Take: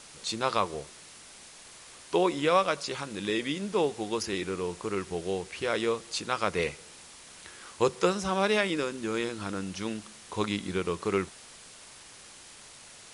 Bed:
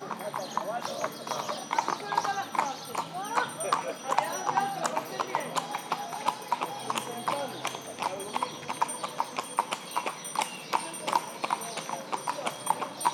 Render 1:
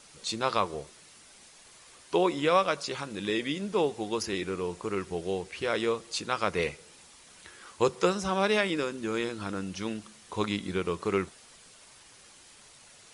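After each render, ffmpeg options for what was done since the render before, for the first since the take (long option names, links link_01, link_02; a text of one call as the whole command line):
ffmpeg -i in.wav -af "afftdn=noise_reduction=6:noise_floor=-50" out.wav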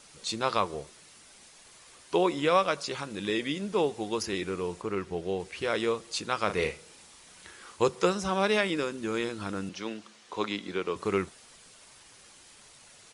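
ffmpeg -i in.wav -filter_complex "[0:a]asettb=1/sr,asplit=3[link_01][link_02][link_03];[link_01]atrim=end=4.824[link_04];[link_02]atrim=start=4.82:end=5.4,asetpts=PTS-STARTPTS,afade=type=in:duration=0.004:curve=qsin,afade=type=out:start_time=0.576:duration=0.004:curve=qsin,lowpass=frequency=3700:poles=1[link_05];[link_03]atrim=start=5.396[link_06];[link_04][link_05]acrossfade=duration=0.004:curve1=hsin:curve2=qsin[link_07];[link_07][link_06]acrossfade=duration=0.004:curve1=qsin:curve2=hsin,asplit=3[link_08][link_09][link_10];[link_08]afade=type=out:start_time=6.48:duration=0.02[link_11];[link_09]asplit=2[link_12][link_13];[link_13]adelay=38,volume=-8dB[link_14];[link_12][link_14]amix=inputs=2:normalize=0,afade=type=in:start_time=6.48:duration=0.02,afade=type=out:start_time=7.76:duration=0.02[link_15];[link_10]afade=type=in:start_time=7.76:duration=0.02[link_16];[link_11][link_15][link_16]amix=inputs=3:normalize=0,asettb=1/sr,asplit=3[link_17][link_18][link_19];[link_17]atrim=end=9.694[link_20];[link_18]atrim=start=9.69:end=10.96,asetpts=PTS-STARTPTS,afade=type=in:duration=0.004:curve=qsin,afade=type=out:start_time=1.266:duration=0.004:curve=qsin,acrossover=split=230 7100:gain=0.2 1 0.178[link_21][link_22][link_23];[link_21][link_22][link_23]amix=inputs=3:normalize=0[link_24];[link_19]atrim=start=10.956[link_25];[link_20][link_24]acrossfade=duration=0.004:curve1=hsin:curve2=qsin[link_26];[link_26][link_25]acrossfade=duration=0.004:curve1=qsin:curve2=hsin" out.wav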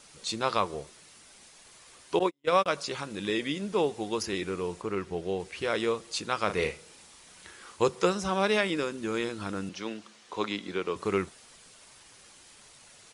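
ffmpeg -i in.wav -filter_complex "[0:a]asettb=1/sr,asplit=3[link_01][link_02][link_03];[link_01]atrim=end=2.194[link_04];[link_02]atrim=start=2.19:end=2.66,asetpts=PTS-STARTPTS,afade=type=in:duration=0.004:curve=qsin,afade=type=out:start_time=0.466:duration=0.004:curve=qsin,agate=range=-48dB:threshold=-25dB:ratio=16:release=100:detection=peak[link_05];[link_03]atrim=start=2.656[link_06];[link_04][link_05]acrossfade=duration=0.004:curve1=hsin:curve2=qsin[link_07];[link_07][link_06]acrossfade=duration=0.004:curve1=qsin:curve2=hsin" out.wav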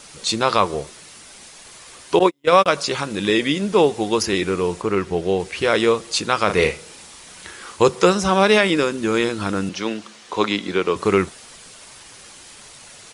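ffmpeg -i in.wav -af "volume=11.5dB,alimiter=limit=-2dB:level=0:latency=1" out.wav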